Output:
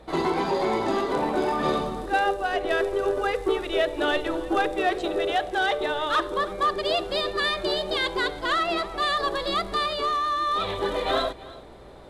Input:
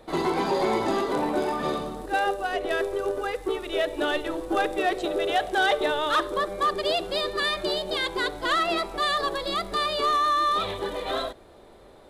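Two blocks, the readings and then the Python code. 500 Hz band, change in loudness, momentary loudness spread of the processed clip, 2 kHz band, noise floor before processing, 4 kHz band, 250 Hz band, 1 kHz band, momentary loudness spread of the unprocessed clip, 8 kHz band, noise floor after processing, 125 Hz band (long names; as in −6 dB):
+1.0 dB, +0.5 dB, 3 LU, +0.5 dB, −50 dBFS, 0.0 dB, +1.0 dB, +0.5 dB, 6 LU, −2.5 dB, −44 dBFS, +2.0 dB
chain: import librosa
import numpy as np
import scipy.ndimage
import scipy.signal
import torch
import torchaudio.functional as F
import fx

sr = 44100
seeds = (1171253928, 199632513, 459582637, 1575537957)

p1 = fx.high_shelf(x, sr, hz=9900.0, db=-10.0)
p2 = fx.hum_notches(p1, sr, base_hz=60, count=10)
p3 = fx.rider(p2, sr, range_db=10, speed_s=0.5)
p4 = fx.add_hum(p3, sr, base_hz=60, snr_db=28)
p5 = p4 + fx.echo_single(p4, sr, ms=323, db=-19.5, dry=0)
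y = p5 * librosa.db_to_amplitude(1.0)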